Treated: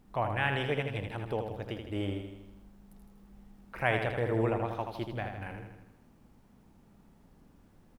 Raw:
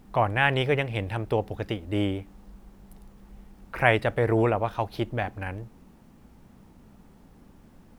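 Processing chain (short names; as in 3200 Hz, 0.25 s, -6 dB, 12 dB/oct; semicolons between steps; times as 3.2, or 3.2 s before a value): feedback echo 80 ms, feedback 57%, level -6 dB; gain -8.5 dB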